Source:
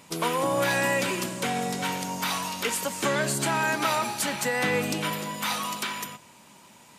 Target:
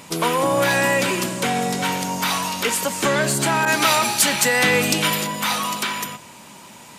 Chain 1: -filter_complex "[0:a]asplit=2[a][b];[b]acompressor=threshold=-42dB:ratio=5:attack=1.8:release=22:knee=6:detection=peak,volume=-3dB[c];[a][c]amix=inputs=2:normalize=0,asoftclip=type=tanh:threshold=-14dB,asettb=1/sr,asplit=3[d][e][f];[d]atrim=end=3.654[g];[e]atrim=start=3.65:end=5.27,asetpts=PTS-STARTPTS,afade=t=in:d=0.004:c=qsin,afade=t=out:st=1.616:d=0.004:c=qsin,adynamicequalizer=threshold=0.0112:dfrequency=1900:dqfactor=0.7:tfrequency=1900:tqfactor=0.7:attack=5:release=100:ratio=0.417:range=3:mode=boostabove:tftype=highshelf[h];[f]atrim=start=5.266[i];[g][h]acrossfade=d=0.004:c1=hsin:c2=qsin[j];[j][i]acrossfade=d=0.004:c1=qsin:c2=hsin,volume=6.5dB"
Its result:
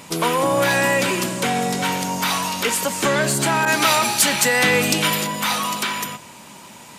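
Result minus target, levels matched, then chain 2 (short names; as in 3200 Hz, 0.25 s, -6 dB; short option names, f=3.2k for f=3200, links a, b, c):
compressor: peak gain reduction -8 dB
-filter_complex "[0:a]asplit=2[a][b];[b]acompressor=threshold=-52dB:ratio=5:attack=1.8:release=22:knee=6:detection=peak,volume=-3dB[c];[a][c]amix=inputs=2:normalize=0,asoftclip=type=tanh:threshold=-14dB,asettb=1/sr,asplit=3[d][e][f];[d]atrim=end=3.654[g];[e]atrim=start=3.65:end=5.27,asetpts=PTS-STARTPTS,afade=t=in:d=0.004:c=qsin,afade=t=out:st=1.616:d=0.004:c=qsin,adynamicequalizer=threshold=0.0112:dfrequency=1900:dqfactor=0.7:tfrequency=1900:tqfactor=0.7:attack=5:release=100:ratio=0.417:range=3:mode=boostabove:tftype=highshelf[h];[f]atrim=start=5.266[i];[g][h]acrossfade=d=0.004:c1=hsin:c2=qsin[j];[j][i]acrossfade=d=0.004:c1=qsin:c2=hsin,volume=6.5dB"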